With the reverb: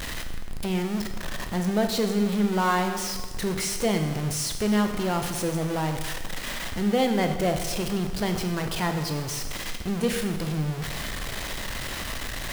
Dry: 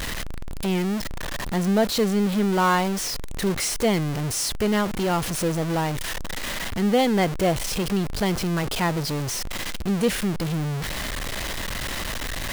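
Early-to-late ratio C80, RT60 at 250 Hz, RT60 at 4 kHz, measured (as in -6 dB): 9.0 dB, 1.4 s, 1.3 s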